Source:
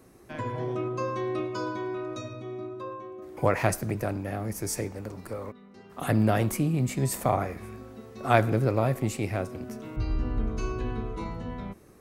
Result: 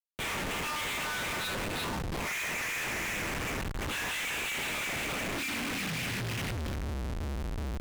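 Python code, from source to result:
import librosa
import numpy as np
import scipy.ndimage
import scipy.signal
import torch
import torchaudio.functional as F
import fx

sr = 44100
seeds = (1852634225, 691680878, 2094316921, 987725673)

p1 = scipy.signal.sosfilt(scipy.signal.cheby2(4, 80, [240.0, 610.0], 'bandstop', fs=sr, output='sos'), x)
p2 = fx.lpc_monotone(p1, sr, seeds[0], pitch_hz=300.0, order=10)
p3 = fx.low_shelf_res(p2, sr, hz=290.0, db=8.5, q=3.0)
p4 = fx.over_compress(p3, sr, threshold_db=-31.0, ratio=-0.5)
p5 = p3 + (p4 * 10.0 ** (0.5 / 20.0))
p6 = fx.vibrato(p5, sr, rate_hz=2.1, depth_cents=11.0)
p7 = fx.filter_sweep_highpass(p6, sr, from_hz=970.0, to_hz=63.0, start_s=6.69, end_s=10.43, q=7.3)
p8 = fx.stretch_vocoder_free(p7, sr, factor=0.65)
p9 = fx.dynamic_eq(p8, sr, hz=540.0, q=2.4, threshold_db=-60.0, ratio=4.0, max_db=4)
p10 = p9 + fx.echo_feedback(p9, sr, ms=346, feedback_pct=37, wet_db=-6, dry=0)
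p11 = fx.rev_double_slope(p10, sr, seeds[1], early_s=0.34, late_s=3.7, knee_db=-19, drr_db=-5.5)
p12 = fx.schmitt(p11, sr, flips_db=-43.5)
y = fx.doppler_dist(p12, sr, depth_ms=0.49)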